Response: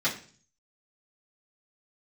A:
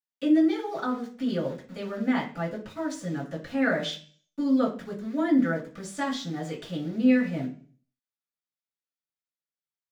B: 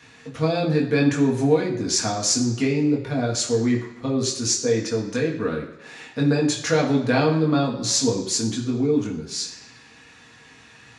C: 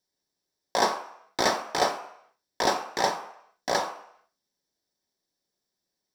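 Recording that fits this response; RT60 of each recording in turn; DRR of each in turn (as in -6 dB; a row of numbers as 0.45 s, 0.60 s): A; 0.45 s, 1.0 s, 0.70 s; -10.0 dB, -2.5 dB, 5.0 dB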